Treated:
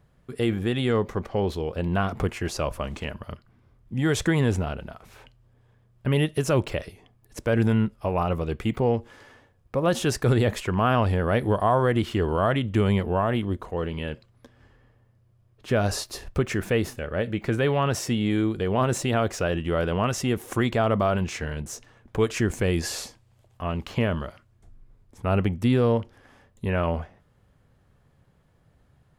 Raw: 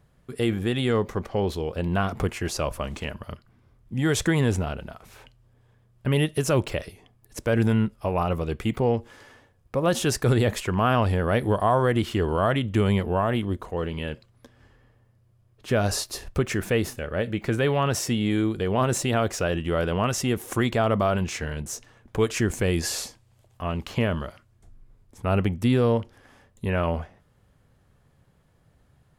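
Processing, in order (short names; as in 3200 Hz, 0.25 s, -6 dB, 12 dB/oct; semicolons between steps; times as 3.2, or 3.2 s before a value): bell 13000 Hz -4.5 dB 2 oct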